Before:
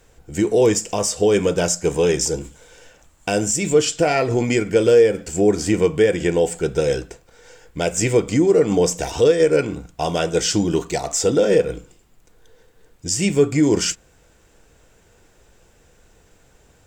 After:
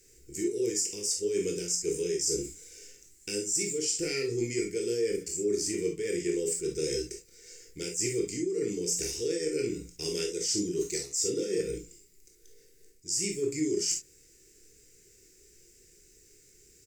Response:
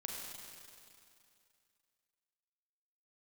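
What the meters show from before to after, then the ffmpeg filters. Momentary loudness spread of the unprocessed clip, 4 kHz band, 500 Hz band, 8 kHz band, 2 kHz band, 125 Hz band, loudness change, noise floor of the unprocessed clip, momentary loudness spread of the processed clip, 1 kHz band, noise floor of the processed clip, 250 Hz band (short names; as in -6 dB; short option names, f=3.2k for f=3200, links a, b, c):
9 LU, -8.0 dB, -14.0 dB, -5.5 dB, -14.5 dB, -17.5 dB, -12.0 dB, -55 dBFS, 11 LU, under -30 dB, -60 dBFS, -13.0 dB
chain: -filter_complex "[0:a]firequalizer=gain_entry='entry(260,0);entry(390,12);entry(660,-25);entry(2100,7);entry(3300,-1);entry(4900,15)':delay=0.05:min_phase=1,areverse,acompressor=threshold=-16dB:ratio=6,areverse[a];[1:a]atrim=start_sample=2205,atrim=end_sample=6174,asetrate=83790,aresample=44100[b];[a][b]afir=irnorm=-1:irlink=0,volume=-3.5dB"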